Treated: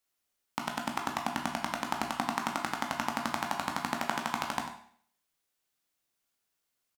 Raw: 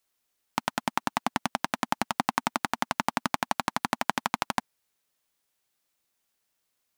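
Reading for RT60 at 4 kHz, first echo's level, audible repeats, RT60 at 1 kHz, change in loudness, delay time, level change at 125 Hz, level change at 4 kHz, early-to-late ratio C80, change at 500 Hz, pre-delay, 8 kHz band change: 0.55 s, -12.0 dB, 1, 0.55 s, -3.5 dB, 95 ms, -3.5 dB, -3.5 dB, 9.0 dB, -3.0 dB, 13 ms, -3.5 dB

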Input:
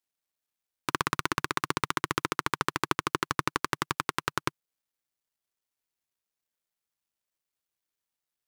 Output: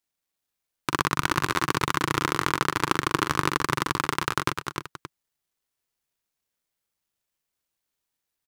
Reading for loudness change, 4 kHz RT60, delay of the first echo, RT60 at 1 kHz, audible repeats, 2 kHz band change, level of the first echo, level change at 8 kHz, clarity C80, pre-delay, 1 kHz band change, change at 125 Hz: +5.0 dB, no reverb, 42 ms, no reverb, 3, +5.0 dB, -7.0 dB, +5.0 dB, no reverb, no reverb, +5.0 dB, +7.5 dB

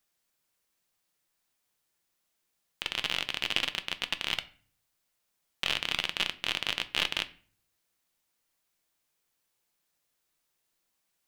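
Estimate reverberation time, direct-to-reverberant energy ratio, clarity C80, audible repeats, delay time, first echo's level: 0.45 s, 10.0 dB, 22.0 dB, no echo, no echo, no echo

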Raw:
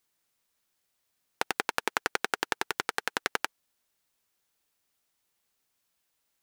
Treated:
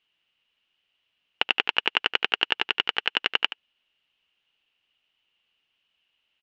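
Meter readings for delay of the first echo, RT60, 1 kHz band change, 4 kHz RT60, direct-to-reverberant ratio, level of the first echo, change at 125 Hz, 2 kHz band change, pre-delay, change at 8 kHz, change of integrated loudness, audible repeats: 76 ms, no reverb, +0.5 dB, no reverb, no reverb, -13.0 dB, no reading, +6.0 dB, no reverb, under -10 dB, +7.5 dB, 1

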